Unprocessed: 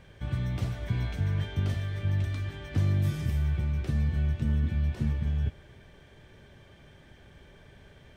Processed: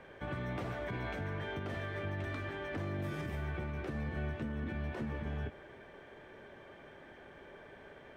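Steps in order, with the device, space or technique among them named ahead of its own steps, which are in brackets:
DJ mixer with the lows and highs turned down (three-way crossover with the lows and the highs turned down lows −18 dB, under 260 Hz, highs −15 dB, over 2,200 Hz; brickwall limiter −36 dBFS, peak gain reduction 8.5 dB)
level +6 dB

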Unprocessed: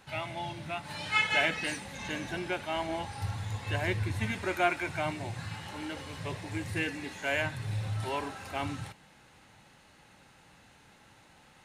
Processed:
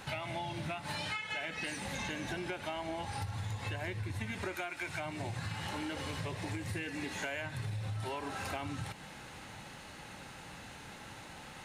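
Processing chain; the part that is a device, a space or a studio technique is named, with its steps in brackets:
serial compression, peaks first (downward compressor, threshold −38 dBFS, peak gain reduction 15.5 dB; downward compressor 3 to 1, threshold −47 dBFS, peak gain reduction 9.5 dB)
0:04.55–0:05.00: tilt shelving filter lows −3.5 dB, about 1,400 Hz
level +9.5 dB

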